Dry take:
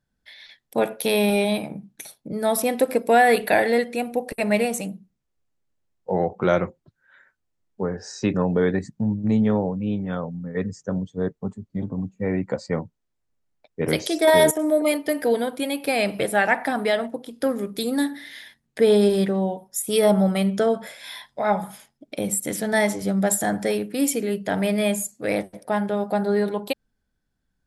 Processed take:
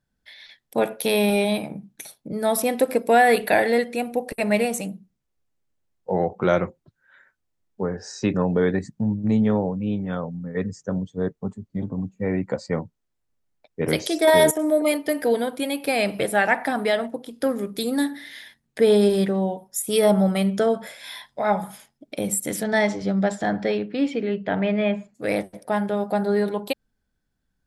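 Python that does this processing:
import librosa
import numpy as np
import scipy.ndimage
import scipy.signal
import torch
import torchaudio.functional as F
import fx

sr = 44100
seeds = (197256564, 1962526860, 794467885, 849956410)

y = fx.lowpass(x, sr, hz=fx.line((22.63, 6400.0), (25.14, 2700.0)), slope=24, at=(22.63, 25.14), fade=0.02)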